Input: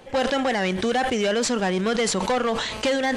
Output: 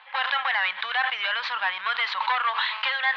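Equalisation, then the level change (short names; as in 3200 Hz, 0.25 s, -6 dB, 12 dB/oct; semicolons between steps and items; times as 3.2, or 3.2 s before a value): elliptic band-pass 970–4000 Hz, stop band 50 dB; air absorption 210 m; +7.0 dB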